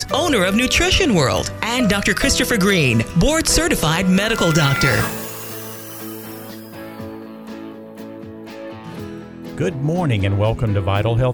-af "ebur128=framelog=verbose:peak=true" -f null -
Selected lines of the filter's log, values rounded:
Integrated loudness:
  I:         -16.8 LUFS
  Threshold: -28.7 LUFS
Loudness range:
  LRA:        17.1 LU
  Threshold: -39.1 LUFS
  LRA low:   -32.9 LUFS
  LRA high:  -15.8 LUFS
True peak:
  Peak:       -1.5 dBFS